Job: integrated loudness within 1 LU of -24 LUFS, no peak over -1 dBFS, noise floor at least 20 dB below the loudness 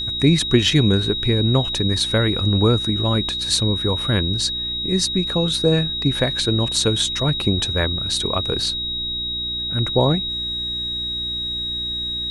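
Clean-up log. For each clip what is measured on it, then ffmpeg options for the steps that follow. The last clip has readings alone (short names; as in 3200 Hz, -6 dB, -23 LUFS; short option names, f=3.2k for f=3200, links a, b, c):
hum 60 Hz; harmonics up to 360 Hz; hum level -35 dBFS; steady tone 3800 Hz; tone level -23 dBFS; loudness -19.5 LUFS; peak -2.0 dBFS; loudness target -24.0 LUFS
-> -af "bandreject=f=60:t=h:w=4,bandreject=f=120:t=h:w=4,bandreject=f=180:t=h:w=4,bandreject=f=240:t=h:w=4,bandreject=f=300:t=h:w=4,bandreject=f=360:t=h:w=4"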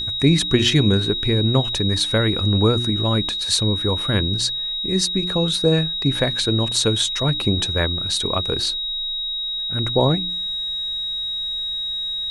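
hum none; steady tone 3800 Hz; tone level -23 dBFS
-> -af "bandreject=f=3.8k:w=30"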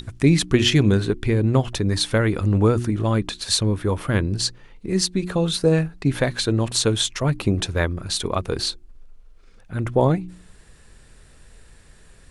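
steady tone none; loudness -21.5 LUFS; peak -4.5 dBFS; loudness target -24.0 LUFS
-> -af "volume=-2.5dB"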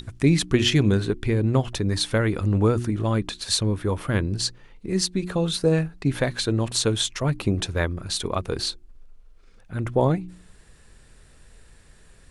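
loudness -24.0 LUFS; peak -7.0 dBFS; noise floor -52 dBFS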